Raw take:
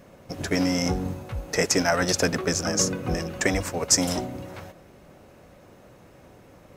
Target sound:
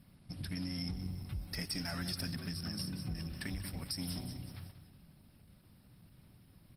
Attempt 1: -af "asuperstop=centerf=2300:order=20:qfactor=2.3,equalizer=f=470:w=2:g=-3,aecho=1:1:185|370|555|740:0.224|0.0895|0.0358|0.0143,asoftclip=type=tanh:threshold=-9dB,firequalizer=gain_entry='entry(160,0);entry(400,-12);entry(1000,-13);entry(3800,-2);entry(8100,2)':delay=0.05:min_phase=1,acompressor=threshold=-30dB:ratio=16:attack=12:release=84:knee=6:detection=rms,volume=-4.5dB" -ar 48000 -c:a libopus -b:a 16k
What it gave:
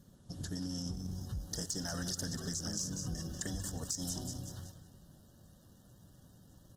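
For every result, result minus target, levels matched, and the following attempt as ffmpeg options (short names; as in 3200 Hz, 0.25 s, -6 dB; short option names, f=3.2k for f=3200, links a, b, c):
8000 Hz band +9.5 dB; 500 Hz band +3.0 dB
-af "asuperstop=centerf=6900:order=20:qfactor=2.3,equalizer=f=470:w=2:g=-3,aecho=1:1:185|370|555|740:0.224|0.0895|0.0358|0.0143,asoftclip=type=tanh:threshold=-9dB,firequalizer=gain_entry='entry(160,0);entry(400,-12);entry(1000,-13);entry(3800,-2);entry(8100,2)':delay=0.05:min_phase=1,acompressor=threshold=-30dB:ratio=16:attack=12:release=84:knee=6:detection=rms,volume=-4.5dB" -ar 48000 -c:a libopus -b:a 16k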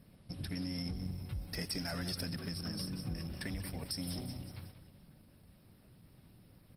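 500 Hz band +4.0 dB
-af "asuperstop=centerf=6900:order=20:qfactor=2.3,equalizer=f=470:w=2:g=-11,aecho=1:1:185|370|555|740:0.224|0.0895|0.0358|0.0143,asoftclip=type=tanh:threshold=-9dB,firequalizer=gain_entry='entry(160,0);entry(400,-12);entry(1000,-13);entry(3800,-2);entry(8100,2)':delay=0.05:min_phase=1,acompressor=threshold=-30dB:ratio=16:attack=12:release=84:knee=6:detection=rms,volume=-4.5dB" -ar 48000 -c:a libopus -b:a 16k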